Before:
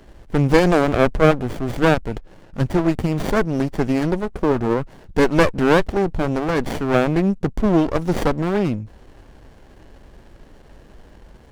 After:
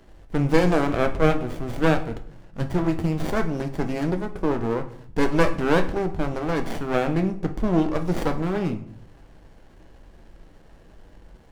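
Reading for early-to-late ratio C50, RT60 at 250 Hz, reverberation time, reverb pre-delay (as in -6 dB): 12.5 dB, 0.80 s, 0.55 s, 6 ms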